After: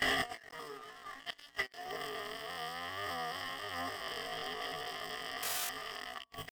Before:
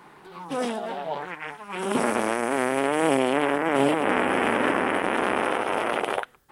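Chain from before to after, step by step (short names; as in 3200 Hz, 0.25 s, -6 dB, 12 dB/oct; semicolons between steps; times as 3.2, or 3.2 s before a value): cycle switcher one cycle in 3, muted; ripple EQ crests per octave 1.4, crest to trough 17 dB; painted sound noise, 5.45–5.7, 280–9700 Hz -17 dBFS; high shelf 4700 Hz -4 dB; notches 60/120/180/240/300/360/420/480/540/600 Hz; gate with hold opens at -39 dBFS; pitch shift +11 st; notch 1100 Hz, Q 24; flipped gate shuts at -23 dBFS, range -42 dB; negative-ratio compressor -51 dBFS, ratio -0.5; sample leveller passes 2; gain +9.5 dB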